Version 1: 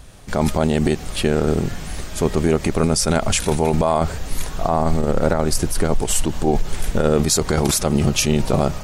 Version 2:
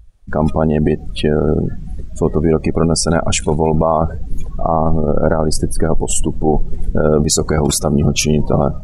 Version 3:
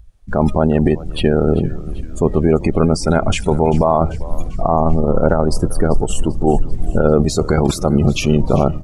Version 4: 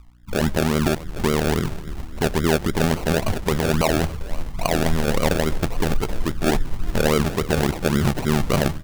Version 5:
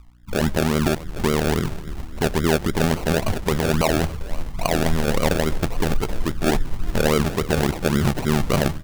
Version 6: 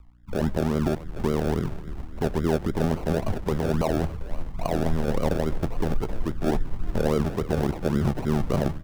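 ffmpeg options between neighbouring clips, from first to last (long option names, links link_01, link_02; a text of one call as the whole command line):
ffmpeg -i in.wav -af "afftdn=noise_reduction=27:noise_floor=-25,volume=4dB" out.wav
ffmpeg -i in.wav -filter_complex "[0:a]acrossover=split=3500[link_01][link_02];[link_02]acompressor=threshold=-26dB:ratio=4:attack=1:release=60[link_03];[link_01][link_03]amix=inputs=2:normalize=0,asplit=6[link_04][link_05][link_06][link_07][link_08][link_09];[link_05]adelay=392,afreqshift=-66,volume=-18.5dB[link_10];[link_06]adelay=784,afreqshift=-132,volume=-23.2dB[link_11];[link_07]adelay=1176,afreqshift=-198,volume=-28dB[link_12];[link_08]adelay=1568,afreqshift=-264,volume=-32.7dB[link_13];[link_09]adelay=1960,afreqshift=-330,volume=-37.4dB[link_14];[link_04][link_10][link_11][link_12][link_13][link_14]amix=inputs=6:normalize=0" out.wav
ffmpeg -i in.wav -af "aeval=exprs='val(0)+0.00501*(sin(2*PI*60*n/s)+sin(2*PI*2*60*n/s)/2+sin(2*PI*3*60*n/s)/3+sin(2*PI*4*60*n/s)/4+sin(2*PI*5*60*n/s)/5)':channel_layout=same,acrusher=samples=35:mix=1:aa=0.000001:lfo=1:lforange=21:lforate=3.6,volume=-6dB" out.wav
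ffmpeg -i in.wav -af anull out.wav
ffmpeg -i in.wav -filter_complex "[0:a]highshelf=frequency=2400:gain=-11,acrossover=split=430|1200|3200[link_01][link_02][link_03][link_04];[link_03]asoftclip=type=tanh:threshold=-37.5dB[link_05];[link_01][link_02][link_05][link_04]amix=inputs=4:normalize=0,volume=-3.5dB" out.wav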